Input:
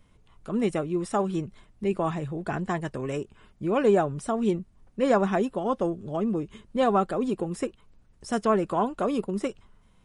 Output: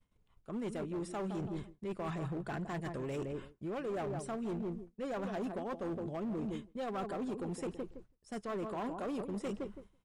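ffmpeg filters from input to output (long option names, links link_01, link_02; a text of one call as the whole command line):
ffmpeg -i in.wav -filter_complex "[0:a]asplit=2[link_01][link_02];[link_02]adelay=165,lowpass=frequency=920:poles=1,volume=-9.5dB,asplit=2[link_03][link_04];[link_04]adelay=165,lowpass=frequency=920:poles=1,volume=0.25,asplit=2[link_05][link_06];[link_06]adelay=165,lowpass=frequency=920:poles=1,volume=0.25[link_07];[link_01][link_03][link_05][link_07]amix=inputs=4:normalize=0,areverse,acompressor=threshold=-36dB:ratio=6,areverse,agate=range=-33dB:threshold=-46dB:ratio=3:detection=peak,volume=35.5dB,asoftclip=hard,volume=-35.5dB,volume=1.5dB" out.wav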